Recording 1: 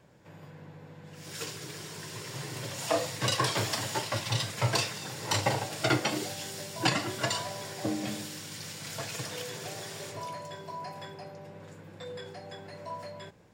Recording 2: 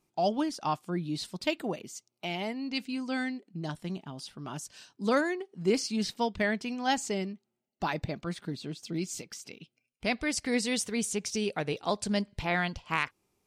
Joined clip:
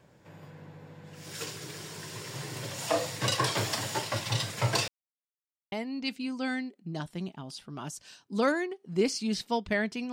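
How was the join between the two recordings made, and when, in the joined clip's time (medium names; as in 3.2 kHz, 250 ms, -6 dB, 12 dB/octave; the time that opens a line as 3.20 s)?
recording 1
4.88–5.72 s: mute
5.72 s: go over to recording 2 from 2.41 s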